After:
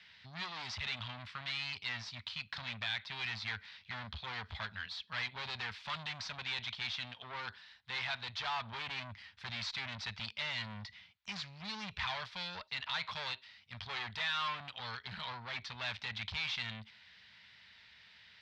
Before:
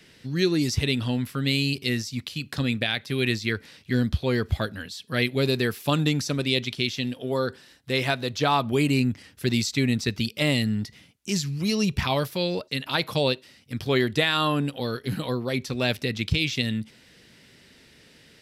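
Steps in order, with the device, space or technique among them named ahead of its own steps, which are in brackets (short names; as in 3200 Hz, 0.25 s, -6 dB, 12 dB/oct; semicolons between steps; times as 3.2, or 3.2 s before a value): scooped metal amplifier (tube stage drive 31 dB, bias 0.6; speaker cabinet 93–3800 Hz, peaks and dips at 140 Hz -9 dB, 210 Hz +3 dB, 340 Hz -9 dB, 510 Hz -9 dB, 950 Hz +5 dB, 2800 Hz -4 dB; passive tone stack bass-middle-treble 10-0-10); gain +5.5 dB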